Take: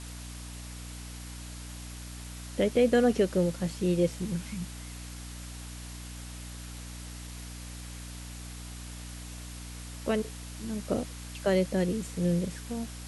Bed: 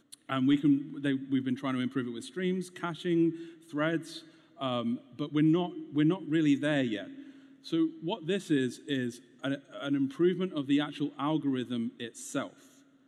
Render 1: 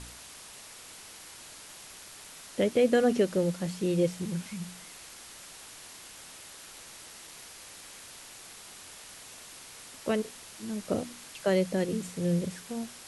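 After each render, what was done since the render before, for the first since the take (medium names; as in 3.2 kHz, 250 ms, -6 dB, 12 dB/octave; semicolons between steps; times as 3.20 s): de-hum 60 Hz, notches 5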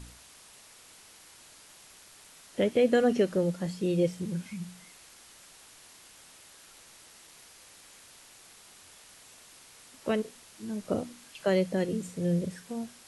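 noise print and reduce 6 dB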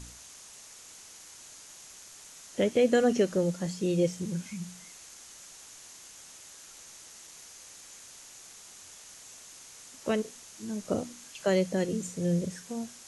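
peaking EQ 6.5 kHz +10.5 dB 0.52 oct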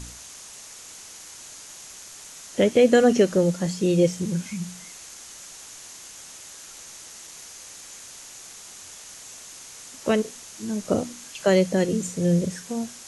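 trim +7 dB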